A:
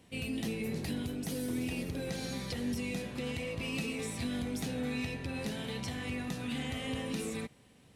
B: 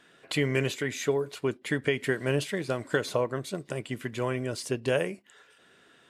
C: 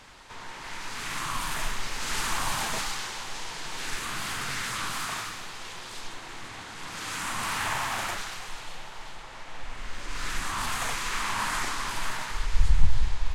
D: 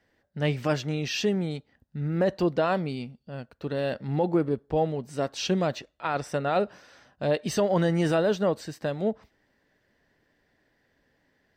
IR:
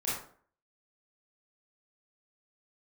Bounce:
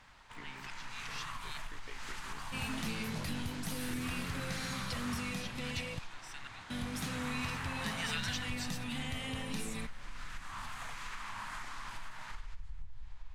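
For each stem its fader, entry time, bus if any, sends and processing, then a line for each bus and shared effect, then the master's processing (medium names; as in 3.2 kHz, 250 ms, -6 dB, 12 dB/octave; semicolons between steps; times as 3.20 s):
0.0 dB, 2.40 s, muted 5.99–6.70 s, no send, none
-15.5 dB, 0.00 s, no send, de-esser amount 85%; AM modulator 57 Hz, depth 85%; barber-pole phaser -0.52 Hz
-6.0 dB, 0.00 s, no send, treble shelf 3.6 kHz -10 dB; compression 20:1, threshold -31 dBFS, peak gain reduction 23.5 dB
+1.5 dB, 0.00 s, no send, steep high-pass 1.7 kHz 36 dB/octave; slow attack 670 ms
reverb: none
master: peaking EQ 390 Hz -9.5 dB 1.3 oct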